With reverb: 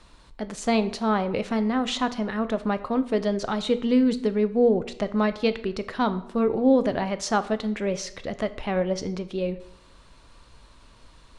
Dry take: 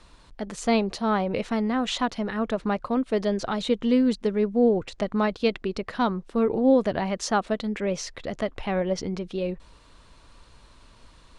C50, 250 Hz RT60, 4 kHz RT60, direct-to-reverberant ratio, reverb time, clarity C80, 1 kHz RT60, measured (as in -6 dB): 15.5 dB, 0.65 s, 0.55 s, 11.5 dB, 0.75 s, 18.0 dB, 0.75 s